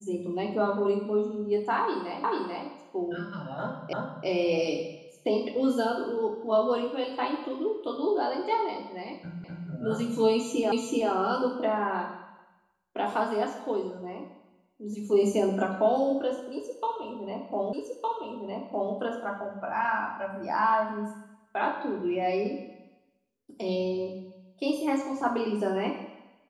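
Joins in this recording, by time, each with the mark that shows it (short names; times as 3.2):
2.24 repeat of the last 0.44 s
3.93 repeat of the last 0.34 s
9.44 repeat of the last 0.25 s
10.72 repeat of the last 0.38 s
17.73 repeat of the last 1.21 s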